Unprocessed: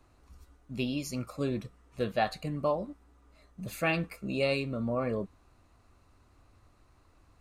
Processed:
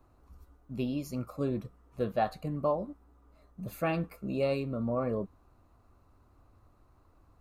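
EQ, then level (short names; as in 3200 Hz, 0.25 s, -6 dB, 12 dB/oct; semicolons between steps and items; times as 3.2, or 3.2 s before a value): band shelf 4100 Hz -9 dB 2.8 oct; 0.0 dB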